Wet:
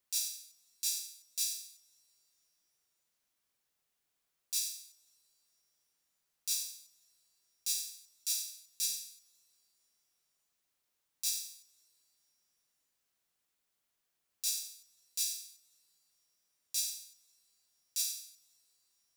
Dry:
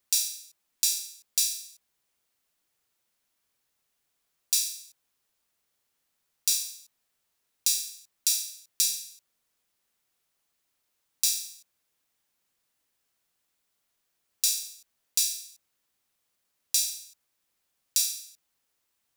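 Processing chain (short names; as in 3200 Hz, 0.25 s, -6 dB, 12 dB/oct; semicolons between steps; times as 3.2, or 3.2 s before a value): limiter -14.5 dBFS, peak gain reduction 10.5 dB; two-slope reverb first 0.3 s, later 3.7 s, from -21 dB, DRR 16 dB; gain -5.5 dB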